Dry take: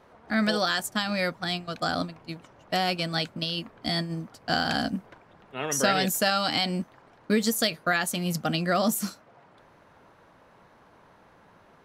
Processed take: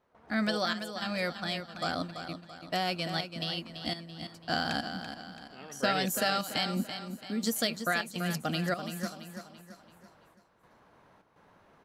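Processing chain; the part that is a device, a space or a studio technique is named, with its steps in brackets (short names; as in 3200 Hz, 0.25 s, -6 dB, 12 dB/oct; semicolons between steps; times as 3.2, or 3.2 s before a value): 6.76–7.44 bell 240 Hz +14 dB 0.36 oct; trance gate with a delay (step gate ".xxxx..xxxx" 103 bpm -12 dB; feedback echo 0.335 s, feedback 44%, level -9 dB); gain -5 dB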